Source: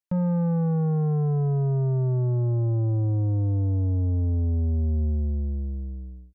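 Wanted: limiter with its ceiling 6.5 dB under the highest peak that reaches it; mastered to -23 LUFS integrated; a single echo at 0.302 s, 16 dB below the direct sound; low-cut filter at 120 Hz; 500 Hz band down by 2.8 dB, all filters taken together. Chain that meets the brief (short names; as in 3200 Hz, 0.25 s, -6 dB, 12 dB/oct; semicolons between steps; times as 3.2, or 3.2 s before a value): HPF 120 Hz; bell 500 Hz -3.5 dB; limiter -25.5 dBFS; echo 0.302 s -16 dB; gain +9.5 dB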